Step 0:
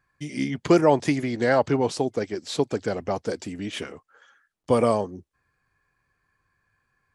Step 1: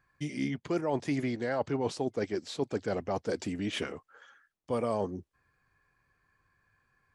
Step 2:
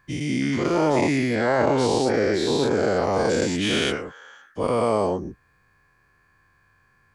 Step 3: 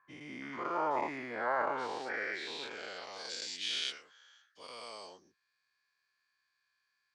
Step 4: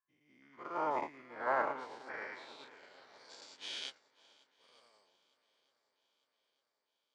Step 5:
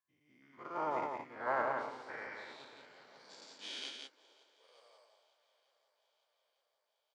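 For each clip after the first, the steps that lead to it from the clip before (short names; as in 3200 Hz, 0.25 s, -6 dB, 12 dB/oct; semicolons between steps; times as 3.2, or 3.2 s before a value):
high shelf 6500 Hz -5.5 dB; reverse; compressor 6:1, threshold -28 dBFS, peak gain reduction 15 dB; reverse
spectral dilation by 0.24 s; gain +4.5 dB
band-pass sweep 1100 Hz -> 4400 Hz, 1.49–3.36; gain -3 dB
swung echo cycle 0.903 s, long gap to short 1.5:1, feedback 56%, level -11 dB; upward expander 2.5:1, over -48 dBFS; gain +1 dB
high-pass sweep 85 Hz -> 610 Hz, 2.38–4.99; echo 0.172 s -4.5 dB; gain -2 dB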